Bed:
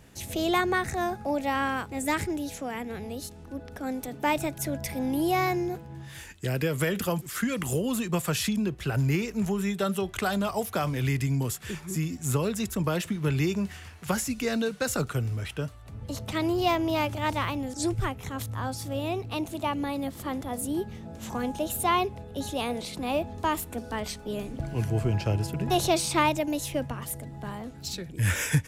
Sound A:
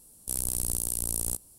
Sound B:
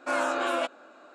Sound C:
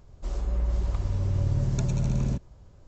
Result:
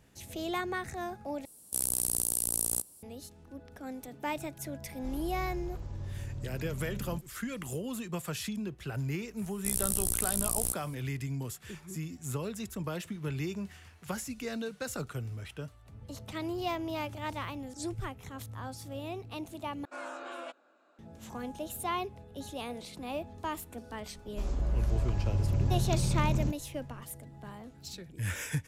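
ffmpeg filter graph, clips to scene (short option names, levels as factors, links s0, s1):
-filter_complex "[1:a]asplit=2[s0][s1];[3:a]asplit=2[s2][s3];[0:a]volume=0.355[s4];[s0]highpass=f=200:p=1[s5];[s2]alimiter=limit=0.0668:level=0:latency=1:release=71[s6];[s4]asplit=3[s7][s8][s9];[s7]atrim=end=1.454[s10];[s5]atrim=end=1.58[s11];[s8]atrim=start=3.026:end=19.854[s12];[2:a]atrim=end=1.14,asetpts=PTS-STARTPTS,volume=0.188[s13];[s9]atrim=start=20.986[s14];[s6]atrim=end=2.87,asetpts=PTS-STARTPTS,volume=0.355,afade=t=in:d=0.004:c=hsin,afade=t=out:st=2.866:d=0.004:c=hsin,adelay=212121S[s15];[s1]atrim=end=1.58,asetpts=PTS-STARTPTS,volume=0.891,afade=t=in:d=0.004:c=hsin,afade=t=out:st=1.576:d=0.004:c=hsin,adelay=9370[s16];[s3]atrim=end=2.87,asetpts=PTS-STARTPTS,volume=0.708,afade=t=in:d=0.004:c=hsin,afade=t=out:st=2.866:d=0.004:c=hsin,adelay=24140[s17];[s10][s11]acrossfade=d=0.004:c1=hsin:c2=hsin[s18];[s18][s12]acrossfade=d=0.004:c1=hsin:c2=hsin[s19];[s19][s13]acrossfade=d=0.004:c1=hsin:c2=hsin[s20];[s20][s14]acrossfade=d=0.004:c1=hsin:c2=hsin[s21];[s21][s15][s16][s17]amix=inputs=4:normalize=0"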